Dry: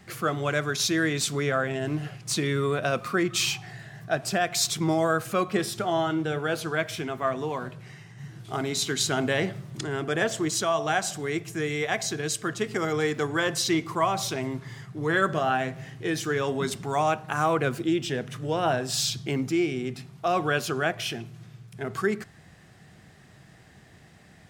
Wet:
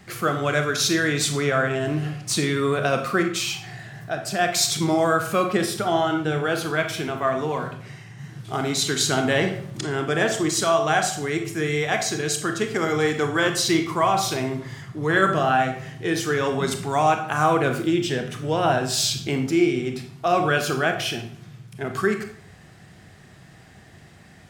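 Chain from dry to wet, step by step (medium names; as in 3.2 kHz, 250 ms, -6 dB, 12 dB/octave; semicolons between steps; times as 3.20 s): 3.22–4.39 s: compression 1.5:1, threshold -36 dBFS, peak gain reduction 6 dB; on a send: reverberation RT60 0.55 s, pre-delay 26 ms, DRR 5.5 dB; on the sum: trim +3.5 dB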